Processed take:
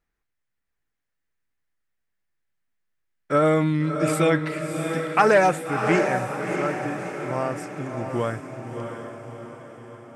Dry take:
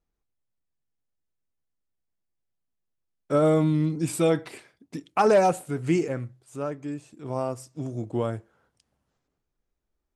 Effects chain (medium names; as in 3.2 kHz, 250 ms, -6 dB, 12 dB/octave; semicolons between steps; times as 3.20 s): peaking EQ 1.8 kHz +12.5 dB 1.1 oct; echo that smears into a reverb 659 ms, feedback 53%, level -6 dB